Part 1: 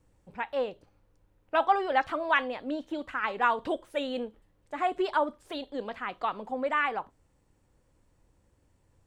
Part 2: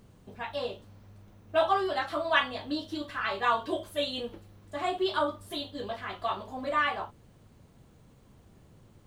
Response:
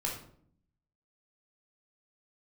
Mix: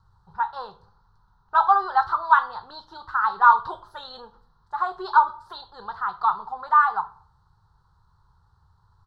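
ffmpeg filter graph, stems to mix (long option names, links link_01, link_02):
-filter_complex "[0:a]equalizer=frequency=98:width=0.35:gain=8,volume=-3dB,asplit=2[link_01][link_02];[link_02]volume=-14.5dB[link_03];[1:a]adelay=1.6,volume=-11dB[link_04];[2:a]atrim=start_sample=2205[link_05];[link_03][link_05]afir=irnorm=-1:irlink=0[link_06];[link_01][link_04][link_06]amix=inputs=3:normalize=0,firequalizer=gain_entry='entry(110,0);entry(180,-5);entry(270,-30);entry(380,-8);entry(570,-17);entry(870,12);entry(1400,12);entry(2300,-24);entry(4100,8);entry(7100,-11)':delay=0.05:min_phase=1"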